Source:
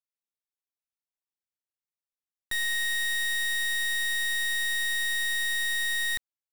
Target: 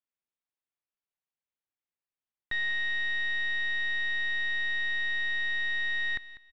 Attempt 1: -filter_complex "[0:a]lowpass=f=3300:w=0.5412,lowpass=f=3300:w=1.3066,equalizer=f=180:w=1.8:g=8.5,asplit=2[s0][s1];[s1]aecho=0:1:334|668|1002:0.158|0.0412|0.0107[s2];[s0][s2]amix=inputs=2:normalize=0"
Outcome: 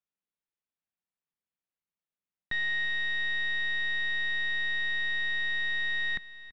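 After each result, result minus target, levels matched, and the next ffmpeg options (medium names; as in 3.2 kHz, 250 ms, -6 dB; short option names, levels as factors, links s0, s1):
echo 137 ms late; 250 Hz band +3.5 dB
-filter_complex "[0:a]lowpass=f=3300:w=0.5412,lowpass=f=3300:w=1.3066,equalizer=f=180:w=1.8:g=8.5,asplit=2[s0][s1];[s1]aecho=0:1:197|394|591:0.158|0.0412|0.0107[s2];[s0][s2]amix=inputs=2:normalize=0"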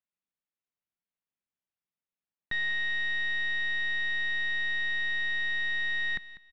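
250 Hz band +4.0 dB
-filter_complex "[0:a]lowpass=f=3300:w=0.5412,lowpass=f=3300:w=1.3066,asplit=2[s0][s1];[s1]aecho=0:1:197|394|591:0.158|0.0412|0.0107[s2];[s0][s2]amix=inputs=2:normalize=0"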